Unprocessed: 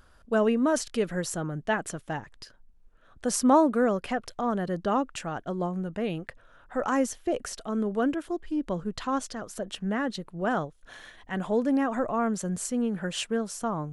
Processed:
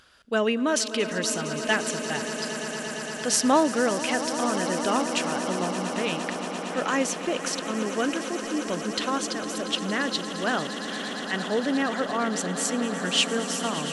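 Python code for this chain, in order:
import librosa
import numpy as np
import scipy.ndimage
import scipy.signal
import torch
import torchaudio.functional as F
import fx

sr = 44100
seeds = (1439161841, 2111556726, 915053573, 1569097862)

y = fx.weighting(x, sr, curve='D')
y = fx.echo_swell(y, sr, ms=115, loudest=8, wet_db=-14.5)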